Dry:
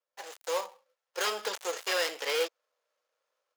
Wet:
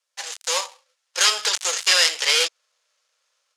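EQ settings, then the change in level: weighting filter ITU-R 468; +6.0 dB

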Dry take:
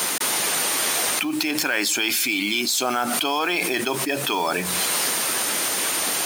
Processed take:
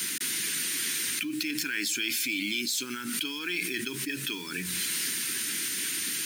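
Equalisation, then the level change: Chebyshev band-stop 300–1500 Hz, order 2; bell 1200 Hz -11.5 dB 0.35 oct; -6.5 dB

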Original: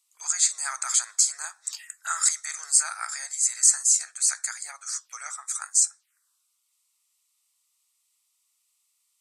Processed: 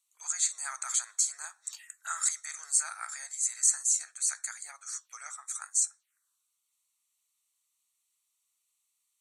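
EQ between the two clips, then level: Butterworth band-stop 5000 Hz, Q 6.9; -6.5 dB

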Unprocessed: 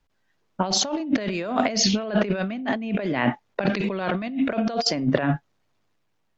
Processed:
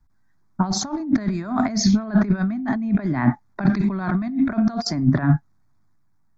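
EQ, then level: low shelf 400 Hz +11 dB; fixed phaser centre 1200 Hz, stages 4; 0.0 dB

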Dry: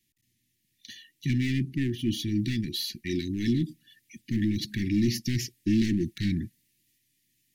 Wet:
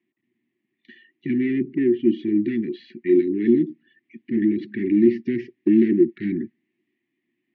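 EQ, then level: bell 480 Hz +13 dB 3 oct; dynamic EQ 360 Hz, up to +3 dB, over -26 dBFS, Q 2.7; speaker cabinet 220–2600 Hz, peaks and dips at 230 Hz +5 dB, 380 Hz +9 dB, 700 Hz +5 dB, 1100 Hz +9 dB, 2000 Hz +4 dB; -5.0 dB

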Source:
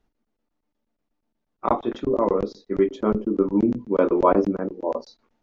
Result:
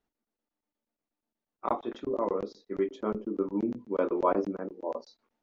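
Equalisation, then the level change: low shelf 150 Hz -11 dB; -7.5 dB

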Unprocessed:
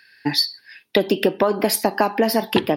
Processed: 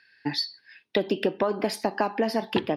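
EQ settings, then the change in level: air absorption 70 m; -6.5 dB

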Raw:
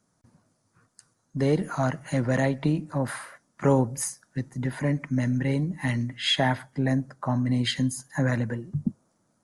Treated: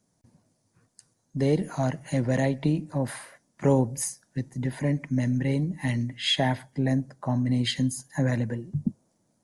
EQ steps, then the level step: bell 1300 Hz -10.5 dB 0.64 oct; 0.0 dB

